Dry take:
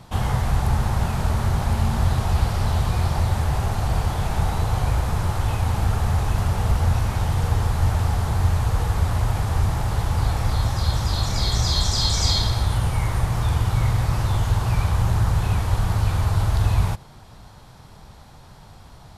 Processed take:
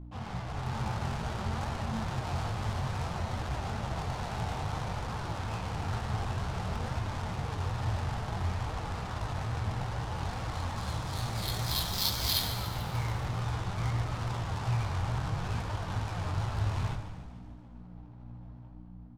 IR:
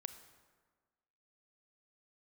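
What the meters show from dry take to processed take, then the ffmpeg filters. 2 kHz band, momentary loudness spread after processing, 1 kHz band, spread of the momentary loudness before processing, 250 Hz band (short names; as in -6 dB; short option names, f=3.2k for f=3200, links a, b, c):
-7.5 dB, 9 LU, -8.0 dB, 3 LU, -9.0 dB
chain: -filter_complex "[0:a]highpass=93,highshelf=f=2.8k:g=-9.5,dynaudnorm=f=100:g=11:m=5dB,flanger=delay=15:depth=7.9:speed=2.3,adynamicsmooth=sensitivity=4:basefreq=710,crystalizer=i=7:c=0,aeval=exprs='val(0)+0.0316*(sin(2*PI*60*n/s)+sin(2*PI*2*60*n/s)/2+sin(2*PI*3*60*n/s)/3+sin(2*PI*4*60*n/s)/4+sin(2*PI*5*60*n/s)/5)':c=same,flanger=delay=2.7:depth=6.7:regen=67:speed=0.57:shape=triangular,asplit=8[a][b][c][d][e][f][g][h];[b]adelay=146,afreqshift=-58,volume=-12dB[i];[c]adelay=292,afreqshift=-116,volume=-16.4dB[j];[d]adelay=438,afreqshift=-174,volume=-20.9dB[k];[e]adelay=584,afreqshift=-232,volume=-25.3dB[l];[f]adelay=730,afreqshift=-290,volume=-29.7dB[m];[g]adelay=876,afreqshift=-348,volume=-34.2dB[n];[h]adelay=1022,afreqshift=-406,volume=-38.6dB[o];[a][i][j][k][l][m][n][o]amix=inputs=8:normalize=0[p];[1:a]atrim=start_sample=2205[q];[p][q]afir=irnorm=-1:irlink=0,volume=-4dB"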